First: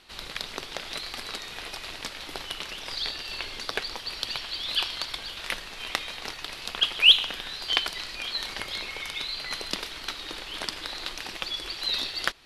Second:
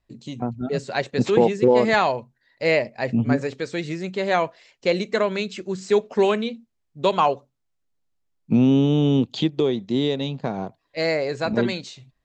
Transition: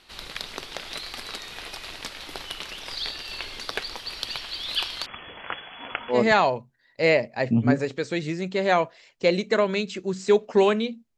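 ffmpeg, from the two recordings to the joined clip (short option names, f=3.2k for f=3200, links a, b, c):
-filter_complex "[0:a]asettb=1/sr,asplit=3[a][b][c];[a]atrim=end=5.064[d];[b]atrim=start=5.06:end=6.2,asetpts=PTS-STARTPTS,afade=t=in:d=0.004:c=qsin,afade=t=out:st=1.136:d=0.004:c=qsin,lowpass=f=2.9k:t=q:w=0.5098,lowpass=f=2.9k:t=q:w=0.6013,lowpass=f=2.9k:t=q:w=0.9,lowpass=f=2.9k:t=q:w=2.563,afreqshift=-3400[e];[c]atrim=start=6.196[f];[d][e]acrossfade=d=0.004:c1=hsin:c2=qsin[g];[g][f]acrossfade=d=0.004:c1=qsin:c2=hsin,apad=whole_dur=11.17,atrim=end=11.17,atrim=end=6.2,asetpts=PTS-STARTPTS[h];[1:a]atrim=start=1.7:end=6.79,asetpts=PTS-STARTPTS[i];[h][i]acrossfade=d=0.12:c1=tri:c2=tri"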